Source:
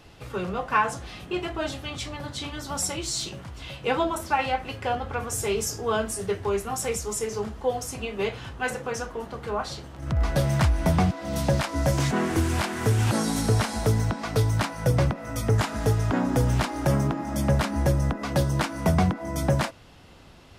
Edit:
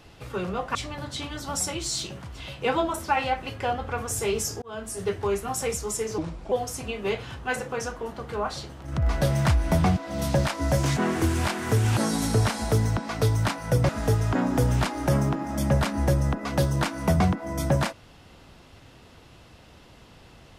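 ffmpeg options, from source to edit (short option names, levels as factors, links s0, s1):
-filter_complex "[0:a]asplit=6[s0][s1][s2][s3][s4][s5];[s0]atrim=end=0.752[s6];[s1]atrim=start=1.968:end=5.84,asetpts=PTS-STARTPTS,afade=t=out:st=3.868:d=0.004:c=hsin[s7];[s2]atrim=start=5.84:end=7.404,asetpts=PTS-STARTPTS,afade=t=in:d=0.44[s8];[s3]atrim=start=7.4:end=7.66,asetpts=PTS-STARTPTS,asetrate=33957,aresample=44100[s9];[s4]atrim=start=7.656:end=15.032[s10];[s5]atrim=start=15.668[s11];[s7][s8]concat=n=2:v=0:a=1[s12];[s6][s12]acrossfade=d=0.004:c1=hsin:c2=hsin[s13];[s13][s9]acrossfade=d=0.004:c1=hsin:c2=hsin[s14];[s14][s10]acrossfade=d=0.004:c1=hsin:c2=hsin[s15];[s15][s11]acrossfade=d=0.004:c1=hsin:c2=hsin"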